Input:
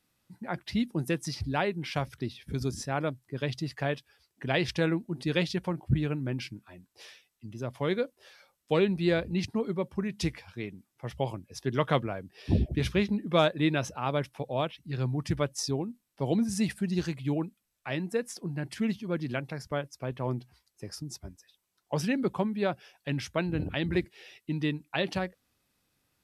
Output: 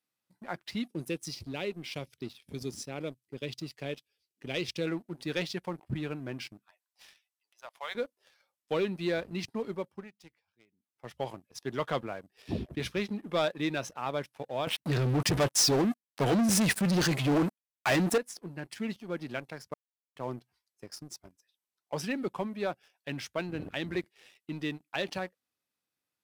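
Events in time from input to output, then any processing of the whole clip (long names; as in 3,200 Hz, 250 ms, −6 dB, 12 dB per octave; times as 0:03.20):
0:00.90–0:04.87: flat-topped bell 1,100 Hz −12 dB
0:06.66–0:07.95: Butterworth high-pass 650 Hz
0:09.75–0:11.13: duck −17 dB, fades 0.42 s
0:14.67–0:18.18: leveller curve on the samples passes 5
0:19.74–0:20.16: silence
whole clip: high-pass filter 310 Hz 6 dB per octave; leveller curve on the samples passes 2; level −9 dB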